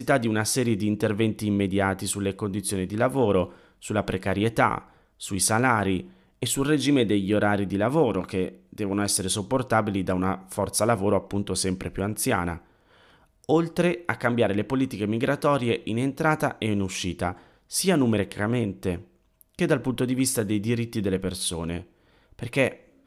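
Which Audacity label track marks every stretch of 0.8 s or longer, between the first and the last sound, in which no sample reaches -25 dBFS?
12.550000	13.490000	silence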